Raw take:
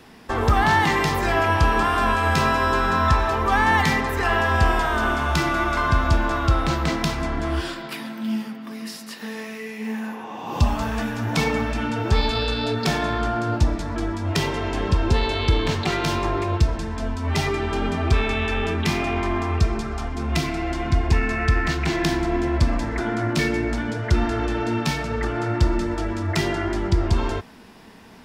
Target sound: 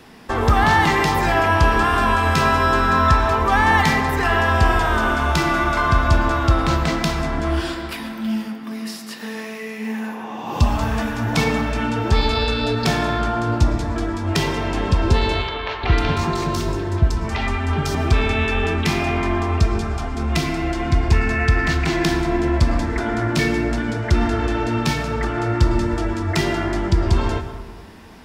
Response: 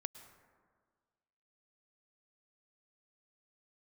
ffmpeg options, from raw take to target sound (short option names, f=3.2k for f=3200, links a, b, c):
-filter_complex "[0:a]asettb=1/sr,asplit=3[a][b][c];[a]atrim=end=15.424[d];[b]atrim=start=15.42:end=17.95,asetpts=PTS-STARTPTS,afade=t=in:d=0.004:c=qsin,afade=t=out:st=2.526:d=0.004:c=qsin,acrossover=split=480|3900[e][f][g];[e]adelay=410[h];[g]adelay=500[i];[h][f][i]amix=inputs=3:normalize=0,atrim=end_sample=111573[j];[c]atrim=start=17.946[k];[d][j]acrossfade=d=0.004:c1=hsin:c2=qsin[l];[l][k]acrossfade=d=0.004:c1=qsin:c2=hsin[m];[1:a]atrim=start_sample=2205[n];[m][n]afir=irnorm=-1:irlink=0,volume=5.5dB"